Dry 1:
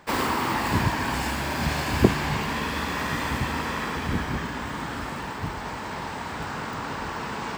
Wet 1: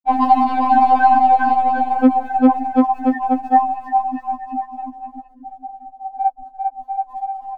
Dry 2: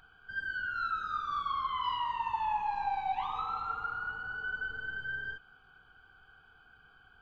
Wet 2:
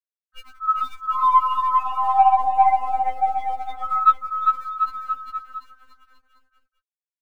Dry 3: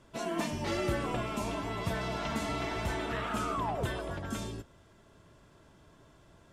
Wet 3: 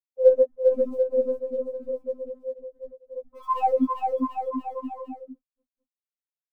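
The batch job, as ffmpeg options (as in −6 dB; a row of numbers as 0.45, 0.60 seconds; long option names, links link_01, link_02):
-filter_complex "[0:a]aemphasis=mode=reproduction:type=50fm,bandreject=frequency=500:width=15,afftfilt=real='re*gte(hypot(re,im),0.158)':imag='im*gte(hypot(re,im),0.158)':win_size=1024:overlap=0.75,acrossover=split=300[link_01][link_02];[link_01]acompressor=threshold=-38dB:ratio=12[link_03];[link_03][link_02]amix=inputs=2:normalize=0,highpass=frequency=360:width_type=q:width=0.5412,highpass=frequency=360:width_type=q:width=1.307,lowpass=frequency=2200:width_type=q:width=0.5176,lowpass=frequency=2200:width_type=q:width=0.7071,lowpass=frequency=2200:width_type=q:width=1.932,afreqshift=-150,aeval=exprs='0.335*(cos(1*acos(clip(val(0)/0.335,-1,1)))-cos(1*PI/2))+0.00944*(cos(4*acos(clip(val(0)/0.335,-1,1)))-cos(4*PI/2))+0.0596*(cos(5*acos(clip(val(0)/0.335,-1,1)))-cos(5*PI/2))+0.0668*(cos(7*acos(clip(val(0)/0.335,-1,1)))-cos(7*PI/2))':channel_layout=same,aresample=11025,asoftclip=type=tanh:threshold=-25dB,aresample=44100,aphaser=in_gain=1:out_gain=1:delay=4.8:decay=0.43:speed=0.79:type=sinusoidal,aecho=1:1:400|740|1029|1275|1483:0.631|0.398|0.251|0.158|0.1,acontrast=28,alimiter=level_in=24.5dB:limit=-1dB:release=50:level=0:latency=1,afftfilt=real='re*3.46*eq(mod(b,12),0)':imag='im*3.46*eq(mod(b,12),0)':win_size=2048:overlap=0.75,volume=-3.5dB"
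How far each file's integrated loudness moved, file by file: +10.5, +14.0, +9.0 LU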